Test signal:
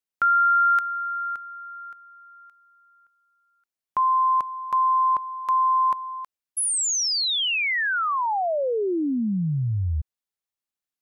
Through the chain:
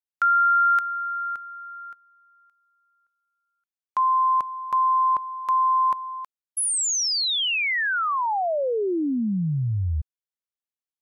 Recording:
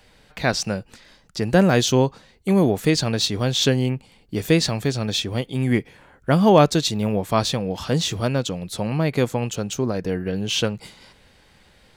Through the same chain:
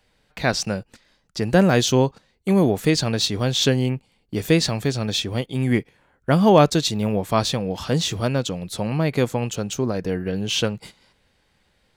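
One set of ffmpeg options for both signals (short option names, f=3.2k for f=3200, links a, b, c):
-af "agate=range=-10dB:threshold=-48dB:ratio=16:release=36:detection=peak"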